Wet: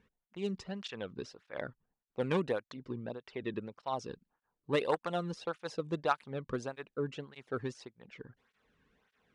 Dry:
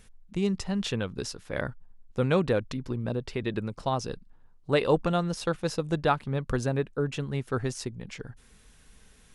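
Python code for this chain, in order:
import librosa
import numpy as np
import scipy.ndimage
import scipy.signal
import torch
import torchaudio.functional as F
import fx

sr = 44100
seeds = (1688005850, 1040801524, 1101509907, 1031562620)

y = fx.cheby_harmonics(x, sr, harmonics=(3, 5), levels_db=(-13, -29), full_scale_db=-10.5)
y = fx.env_lowpass(y, sr, base_hz=2200.0, full_db=-24.5)
y = fx.flanger_cancel(y, sr, hz=1.7, depth_ms=1.6)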